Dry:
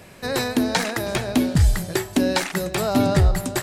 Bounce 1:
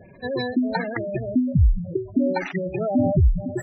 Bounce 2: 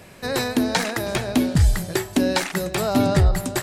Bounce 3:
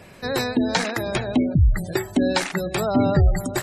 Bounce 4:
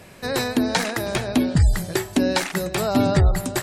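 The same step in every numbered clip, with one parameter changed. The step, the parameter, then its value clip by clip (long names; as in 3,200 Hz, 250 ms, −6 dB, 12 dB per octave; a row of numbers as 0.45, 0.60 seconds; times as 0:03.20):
gate on every frequency bin, under each frame's peak: −10, −55, −25, −40 decibels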